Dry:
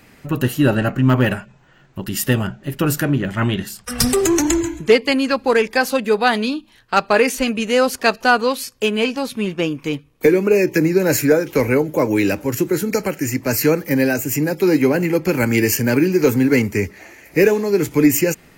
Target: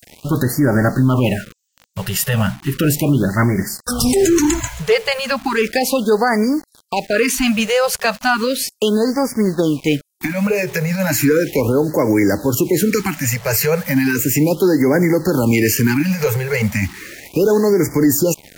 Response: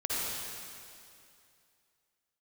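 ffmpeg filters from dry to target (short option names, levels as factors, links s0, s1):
-filter_complex "[0:a]acrossover=split=6200[s0][s1];[s0]acrusher=bits=6:mix=0:aa=0.000001[s2];[s2][s1]amix=inputs=2:normalize=0,alimiter=level_in=3.76:limit=0.891:release=50:level=0:latency=1,afftfilt=real='re*(1-between(b*sr/1024,270*pow(3300/270,0.5+0.5*sin(2*PI*0.35*pts/sr))/1.41,270*pow(3300/270,0.5+0.5*sin(2*PI*0.35*pts/sr))*1.41))':imag='im*(1-between(b*sr/1024,270*pow(3300/270,0.5+0.5*sin(2*PI*0.35*pts/sr))/1.41,270*pow(3300/270,0.5+0.5*sin(2*PI*0.35*pts/sr))*1.41))':win_size=1024:overlap=0.75,volume=0.562"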